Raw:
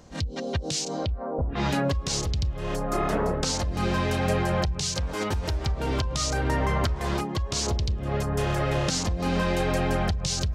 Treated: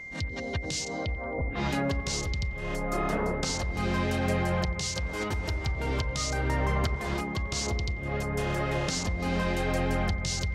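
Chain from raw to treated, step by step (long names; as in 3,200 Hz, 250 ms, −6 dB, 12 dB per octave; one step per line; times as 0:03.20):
delay with a low-pass on its return 90 ms, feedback 64%, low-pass 1,500 Hz, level −12 dB
steady tone 2,100 Hz −35 dBFS
level −4 dB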